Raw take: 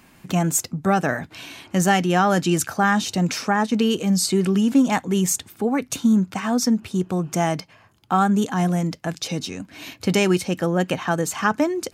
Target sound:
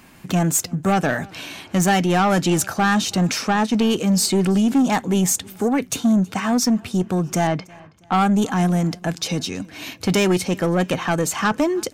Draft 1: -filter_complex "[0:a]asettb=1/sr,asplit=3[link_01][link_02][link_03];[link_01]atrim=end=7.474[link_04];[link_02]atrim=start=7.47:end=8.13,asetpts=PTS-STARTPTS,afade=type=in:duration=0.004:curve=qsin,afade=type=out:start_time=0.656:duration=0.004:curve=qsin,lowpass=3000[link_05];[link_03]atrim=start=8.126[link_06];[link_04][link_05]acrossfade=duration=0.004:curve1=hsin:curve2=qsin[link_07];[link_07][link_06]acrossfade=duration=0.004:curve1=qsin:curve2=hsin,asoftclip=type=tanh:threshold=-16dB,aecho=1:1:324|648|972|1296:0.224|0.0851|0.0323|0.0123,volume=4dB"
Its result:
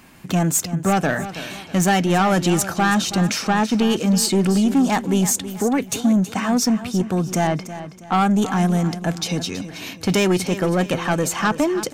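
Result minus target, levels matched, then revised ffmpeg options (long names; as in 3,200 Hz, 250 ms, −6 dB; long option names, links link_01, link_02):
echo-to-direct +12 dB
-filter_complex "[0:a]asettb=1/sr,asplit=3[link_01][link_02][link_03];[link_01]atrim=end=7.474[link_04];[link_02]atrim=start=7.47:end=8.13,asetpts=PTS-STARTPTS,afade=type=in:duration=0.004:curve=qsin,afade=type=out:start_time=0.656:duration=0.004:curve=qsin,lowpass=3000[link_05];[link_03]atrim=start=8.126[link_06];[link_04][link_05]acrossfade=duration=0.004:curve1=hsin:curve2=qsin[link_07];[link_07][link_06]acrossfade=duration=0.004:curve1=qsin:curve2=hsin,asoftclip=type=tanh:threshold=-16dB,aecho=1:1:324|648:0.0562|0.0214,volume=4dB"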